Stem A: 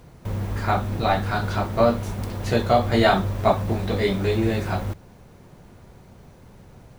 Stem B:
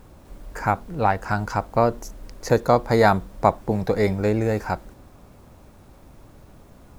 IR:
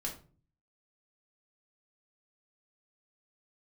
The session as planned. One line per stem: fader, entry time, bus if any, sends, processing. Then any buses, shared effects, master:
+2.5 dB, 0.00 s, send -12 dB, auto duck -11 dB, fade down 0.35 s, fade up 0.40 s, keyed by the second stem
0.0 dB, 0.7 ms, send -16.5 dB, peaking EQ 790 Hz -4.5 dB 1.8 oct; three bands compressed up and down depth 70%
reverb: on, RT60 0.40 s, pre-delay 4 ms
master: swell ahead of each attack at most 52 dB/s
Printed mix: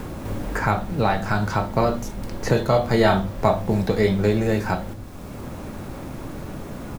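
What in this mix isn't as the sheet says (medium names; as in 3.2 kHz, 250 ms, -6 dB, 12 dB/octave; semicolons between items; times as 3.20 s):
stem B: polarity flipped; master: missing swell ahead of each attack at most 52 dB/s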